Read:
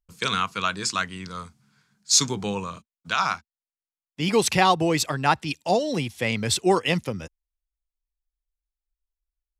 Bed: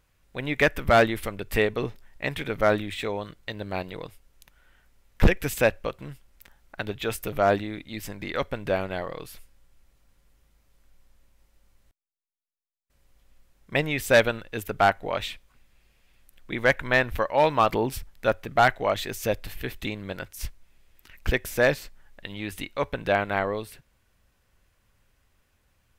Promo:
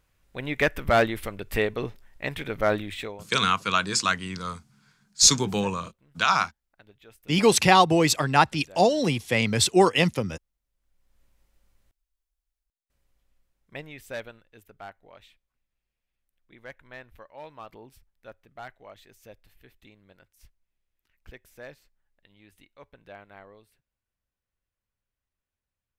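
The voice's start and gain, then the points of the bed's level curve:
3.10 s, +2.0 dB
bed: 3.01 s -2 dB
3.36 s -23.5 dB
10.62 s -23.5 dB
11.22 s -4 dB
12.41 s -4 dB
14.81 s -22.5 dB

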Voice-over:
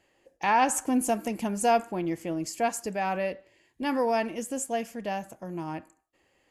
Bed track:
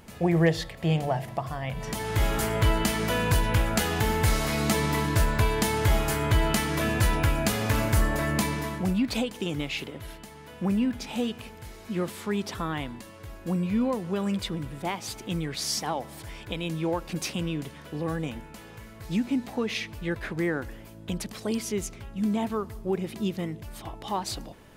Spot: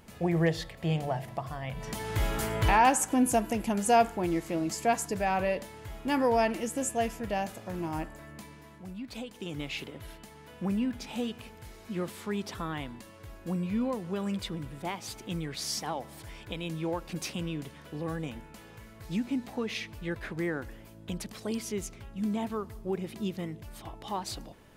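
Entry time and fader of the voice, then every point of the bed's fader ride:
2.25 s, +0.5 dB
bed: 2.7 s -4.5 dB
2.91 s -20.5 dB
8.64 s -20.5 dB
9.69 s -4.5 dB

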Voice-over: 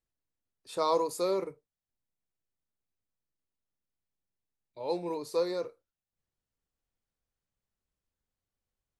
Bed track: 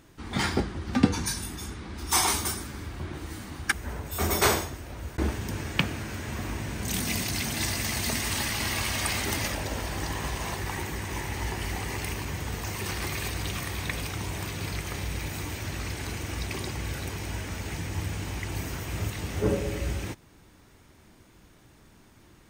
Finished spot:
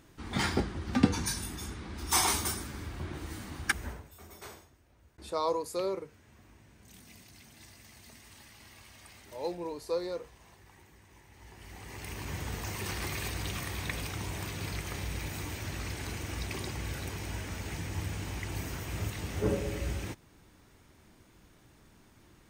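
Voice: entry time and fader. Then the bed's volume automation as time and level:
4.55 s, -3.0 dB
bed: 3.86 s -3 dB
4.22 s -25 dB
11.28 s -25 dB
12.33 s -4 dB

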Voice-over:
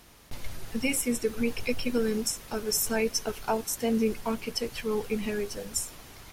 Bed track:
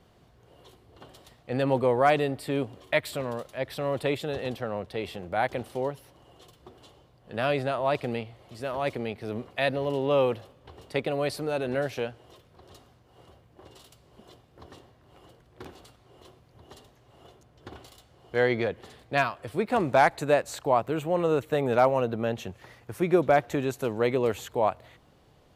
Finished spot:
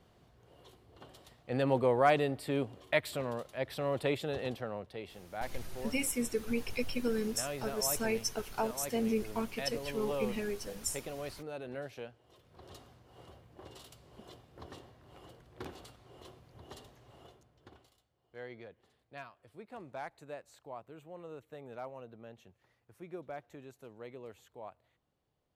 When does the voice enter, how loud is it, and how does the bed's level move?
5.10 s, -5.5 dB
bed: 4.46 s -4.5 dB
5.21 s -13.5 dB
12.22 s -13.5 dB
12.63 s -0.5 dB
17.1 s -0.5 dB
18.14 s -22.5 dB

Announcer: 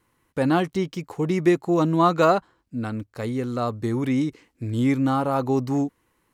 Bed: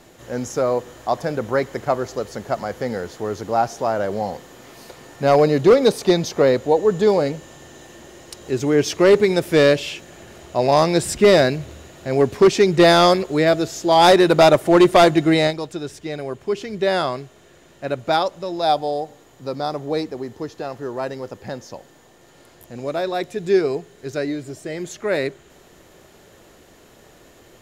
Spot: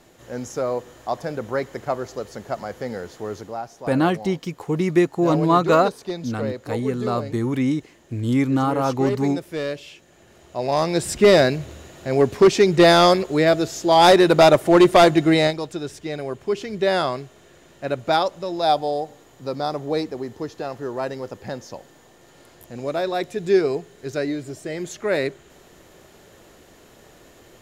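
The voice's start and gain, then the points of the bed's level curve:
3.50 s, +1.5 dB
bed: 3.38 s -4.5 dB
3.61 s -13 dB
10 s -13 dB
11.26 s -0.5 dB

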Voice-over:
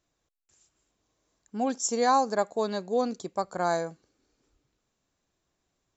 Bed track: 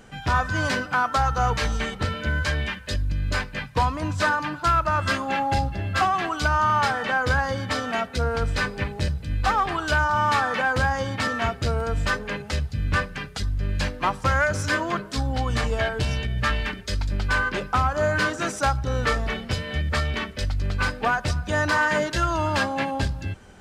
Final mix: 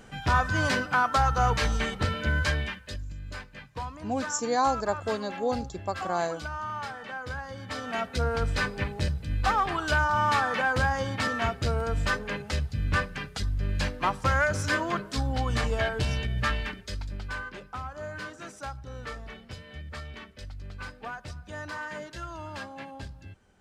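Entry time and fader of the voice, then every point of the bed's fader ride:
2.50 s, -2.0 dB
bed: 2.49 s -1.5 dB
3.13 s -14 dB
7.48 s -14 dB
8.08 s -3 dB
16.39 s -3 dB
17.63 s -15.5 dB

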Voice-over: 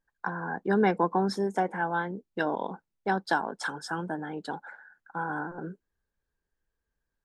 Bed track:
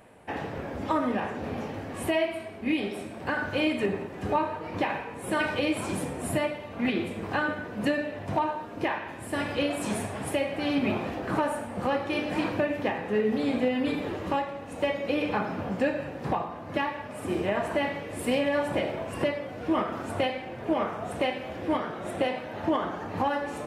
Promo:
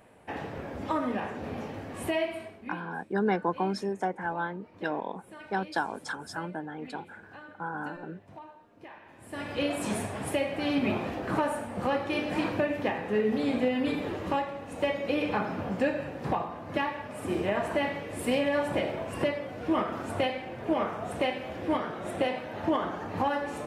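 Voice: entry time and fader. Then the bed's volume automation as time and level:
2.45 s, -3.0 dB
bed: 2.45 s -3 dB
2.83 s -20 dB
8.84 s -20 dB
9.67 s -1 dB

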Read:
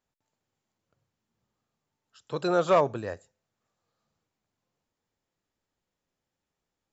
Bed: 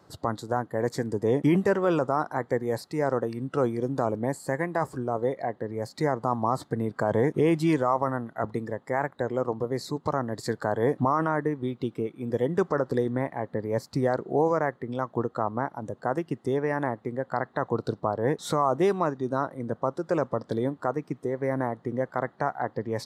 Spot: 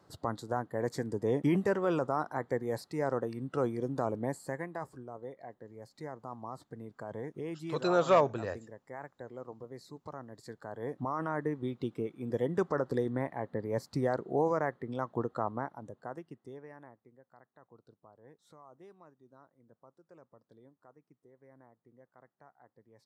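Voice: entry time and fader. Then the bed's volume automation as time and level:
5.40 s, -2.5 dB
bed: 4.28 s -6 dB
5.13 s -17 dB
10.63 s -17 dB
11.52 s -5.5 dB
15.46 s -5.5 dB
17.31 s -31.5 dB

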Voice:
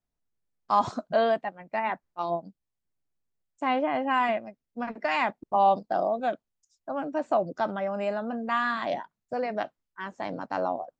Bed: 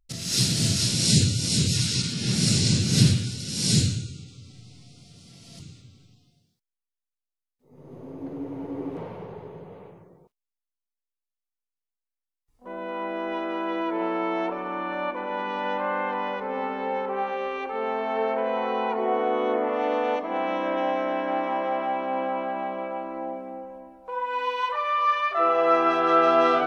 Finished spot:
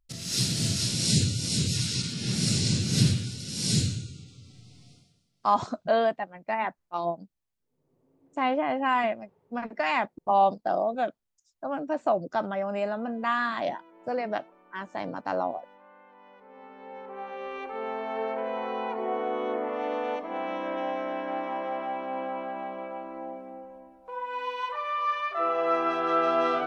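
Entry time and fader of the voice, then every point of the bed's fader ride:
4.75 s, 0.0 dB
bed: 4.93 s -4 dB
5.31 s -27.5 dB
16.08 s -27.5 dB
17.57 s -5.5 dB

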